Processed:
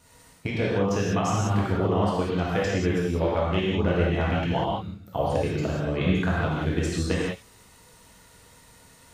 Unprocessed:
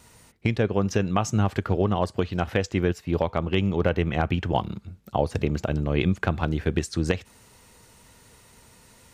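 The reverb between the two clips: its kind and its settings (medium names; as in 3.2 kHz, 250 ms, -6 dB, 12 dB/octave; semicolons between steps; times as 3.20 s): gated-style reverb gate 220 ms flat, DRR -6.5 dB; trim -6.5 dB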